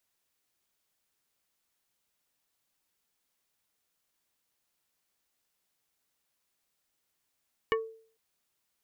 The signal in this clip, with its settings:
struck wood plate, lowest mode 447 Hz, decay 0.49 s, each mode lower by 2 dB, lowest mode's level −23 dB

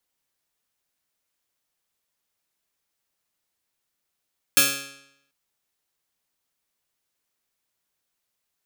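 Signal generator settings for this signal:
Karplus-Strong string C#3, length 0.74 s, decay 0.78 s, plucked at 0.14, bright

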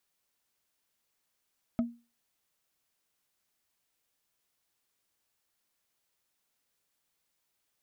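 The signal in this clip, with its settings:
struck wood, lowest mode 236 Hz, decay 0.31 s, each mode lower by 8.5 dB, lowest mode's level −22 dB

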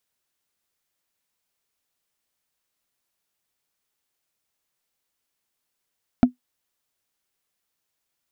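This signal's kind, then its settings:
struck wood, lowest mode 249 Hz, decay 0.12 s, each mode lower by 8 dB, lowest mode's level −5.5 dB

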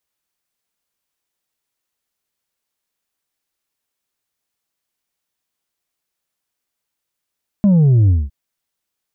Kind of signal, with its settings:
bass drop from 210 Hz, over 0.66 s, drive 3.5 dB, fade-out 0.21 s, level −9 dB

